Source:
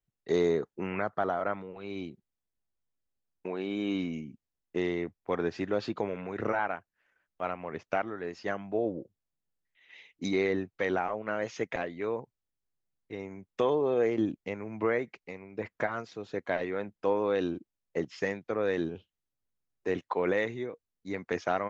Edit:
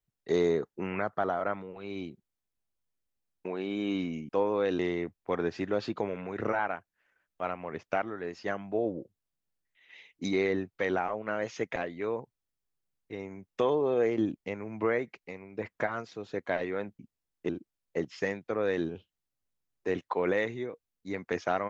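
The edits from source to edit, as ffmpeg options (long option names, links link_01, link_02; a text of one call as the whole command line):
ffmpeg -i in.wav -filter_complex "[0:a]asplit=5[link_01][link_02][link_03][link_04][link_05];[link_01]atrim=end=4.292[link_06];[link_02]atrim=start=16.988:end=17.492[link_07];[link_03]atrim=start=4.788:end=16.992[link_08];[link_04]atrim=start=4.288:end=4.792[link_09];[link_05]atrim=start=17.488[link_10];[link_06][link_07]acrossfade=duration=0.004:curve1=hsin:curve2=hsin[link_11];[link_11][link_08]acrossfade=duration=0.004:curve1=hsin:curve2=hsin[link_12];[link_12][link_09]acrossfade=duration=0.004:curve1=hsin:curve2=hsin[link_13];[link_13][link_10]acrossfade=duration=0.004:curve1=hsin:curve2=hsin" out.wav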